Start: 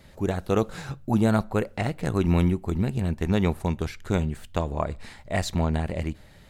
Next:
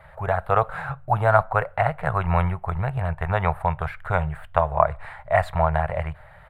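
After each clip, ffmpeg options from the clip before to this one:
-af "firequalizer=gain_entry='entry(150,0);entry(240,-29);entry(440,-6);entry(640,9);entry(1400,10);entry(2700,-4);entry(6000,-26);entry(8700,-11)':delay=0.05:min_phase=1,volume=2dB"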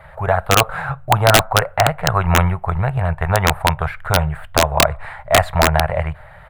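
-af "aeval=exprs='(mod(2.51*val(0)+1,2)-1)/2.51':c=same,volume=6.5dB"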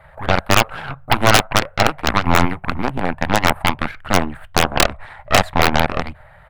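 -af "aeval=exprs='0.891*(cos(1*acos(clip(val(0)/0.891,-1,1)))-cos(1*PI/2))+0.2*(cos(6*acos(clip(val(0)/0.891,-1,1)))-cos(6*PI/2))+0.224*(cos(7*acos(clip(val(0)/0.891,-1,1)))-cos(7*PI/2))':c=same,volume=-2dB"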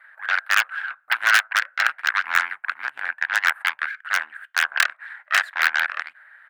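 -af "highpass=f=1.6k:t=q:w=6.1,volume=-9dB"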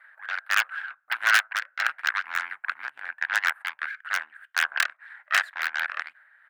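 -af "tremolo=f=1.5:d=0.52,volume=-3dB"

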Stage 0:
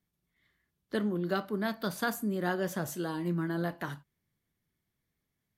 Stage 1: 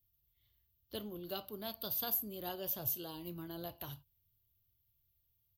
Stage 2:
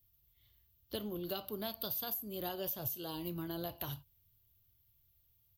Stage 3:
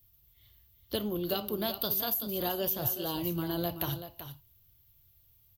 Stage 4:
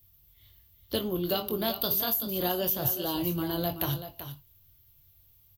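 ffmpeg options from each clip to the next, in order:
-af "firequalizer=gain_entry='entry(110,0);entry(170,-23);entry(250,-19);entry(700,-14);entry(1800,-27);entry(2800,-6);entry(5000,-8);entry(9200,-17);entry(13000,10)':delay=0.05:min_phase=1,volume=5.5dB"
-af "acompressor=threshold=-41dB:ratio=10,volume=6dB"
-af "aecho=1:1:381:0.299,volume=7.5dB"
-filter_complex "[0:a]asplit=2[a][b];[b]adelay=22,volume=-8dB[c];[a][c]amix=inputs=2:normalize=0,volume=2.5dB"

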